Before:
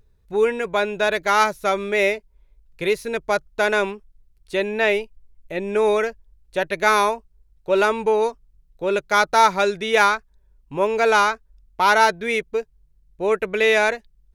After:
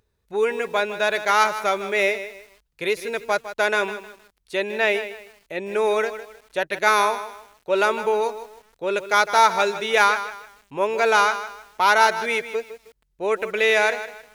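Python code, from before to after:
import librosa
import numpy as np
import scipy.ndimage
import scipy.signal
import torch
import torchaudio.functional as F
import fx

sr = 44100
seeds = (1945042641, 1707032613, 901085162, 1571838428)

y = scipy.signal.sosfilt(scipy.signal.butter(2, 48.0, 'highpass', fs=sr, output='sos'), x)
y = fx.low_shelf(y, sr, hz=270.0, db=-10.5)
y = fx.echo_crushed(y, sr, ms=156, feedback_pct=35, bits=7, wet_db=-12.0)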